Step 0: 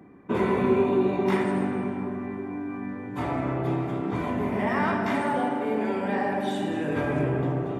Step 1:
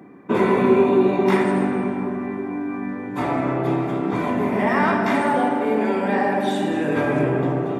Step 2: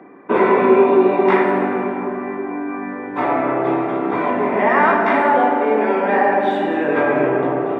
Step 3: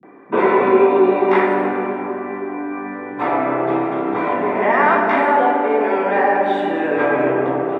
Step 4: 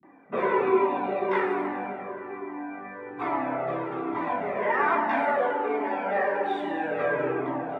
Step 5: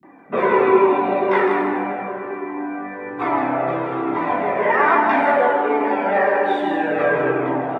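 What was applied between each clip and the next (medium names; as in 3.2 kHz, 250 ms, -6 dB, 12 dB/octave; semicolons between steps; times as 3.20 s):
high-pass 150 Hz 12 dB/octave; band-stop 3 kHz, Q 25; trim +6.5 dB
three-band isolator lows -15 dB, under 310 Hz, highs -24 dB, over 2.9 kHz; trim +6.5 dB
bands offset in time lows, highs 30 ms, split 180 Hz
on a send at -14.5 dB: reverberation RT60 0.70 s, pre-delay 3 ms; on the sum: Shepard-style flanger falling 1.2 Hz; trim -5 dB
delay 160 ms -6.5 dB; trim +7.5 dB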